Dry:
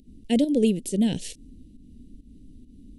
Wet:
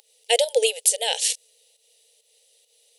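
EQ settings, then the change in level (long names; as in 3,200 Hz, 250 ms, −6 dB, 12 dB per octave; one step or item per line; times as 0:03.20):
linear-phase brick-wall high-pass 440 Hz
parametric band 830 Hz +12 dB 0.22 octaves
high-shelf EQ 2,100 Hz +10 dB
+7.0 dB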